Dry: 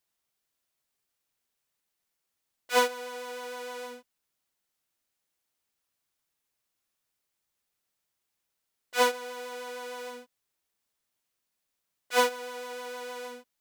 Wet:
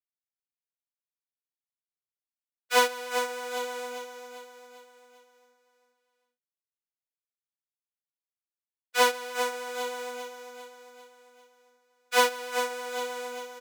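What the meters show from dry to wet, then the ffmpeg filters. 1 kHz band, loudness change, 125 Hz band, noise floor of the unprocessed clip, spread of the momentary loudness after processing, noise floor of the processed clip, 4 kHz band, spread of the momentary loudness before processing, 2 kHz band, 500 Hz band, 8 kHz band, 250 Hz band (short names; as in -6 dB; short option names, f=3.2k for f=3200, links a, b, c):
+3.0 dB, +2.5 dB, n/a, -83 dBFS, 20 LU, under -85 dBFS, +4.0 dB, 16 LU, +3.5 dB, +2.0 dB, +4.5 dB, -0.5 dB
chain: -af "lowshelf=f=420:g=-7,agate=range=-33dB:threshold=-39dB:ratio=3:detection=peak,aecho=1:1:397|794|1191|1588|1985|2382:0.376|0.184|0.0902|0.0442|0.0217|0.0106,volume=3.5dB"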